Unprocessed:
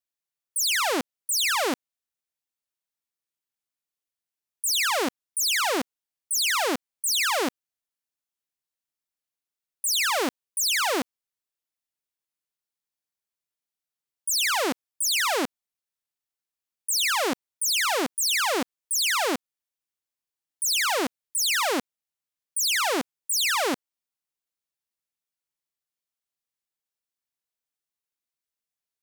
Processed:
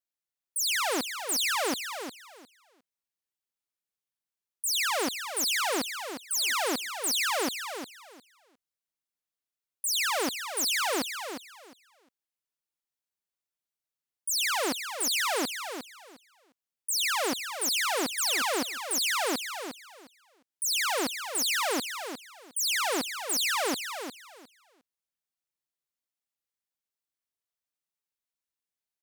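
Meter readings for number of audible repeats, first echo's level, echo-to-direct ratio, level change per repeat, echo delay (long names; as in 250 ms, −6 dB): 2, −8.5 dB, −8.5 dB, −14.0 dB, 356 ms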